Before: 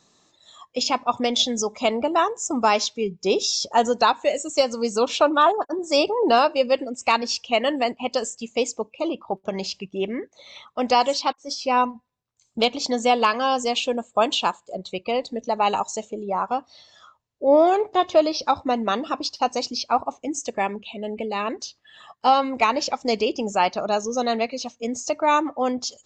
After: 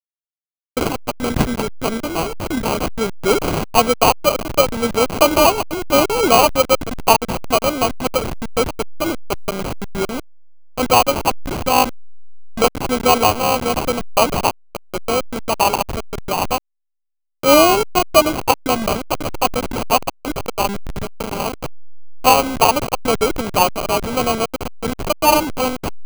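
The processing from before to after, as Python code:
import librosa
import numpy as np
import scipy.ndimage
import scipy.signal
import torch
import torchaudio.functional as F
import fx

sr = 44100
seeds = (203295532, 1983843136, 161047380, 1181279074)

y = fx.delta_hold(x, sr, step_db=-22.5)
y = fx.peak_eq(y, sr, hz=800.0, db=-13.5, octaves=0.92, at=(0.89, 2.82))
y = fx.sample_hold(y, sr, seeds[0], rate_hz=1800.0, jitter_pct=0)
y = F.gain(torch.from_numpy(y), 5.5).numpy()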